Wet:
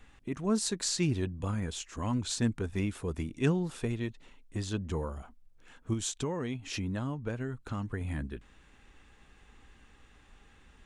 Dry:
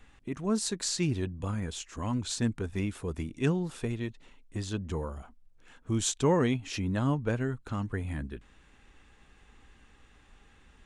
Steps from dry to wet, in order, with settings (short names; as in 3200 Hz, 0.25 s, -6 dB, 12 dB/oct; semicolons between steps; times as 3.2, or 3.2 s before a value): 5.93–8.01 compressor 6:1, threshold -31 dBFS, peak gain reduction 11 dB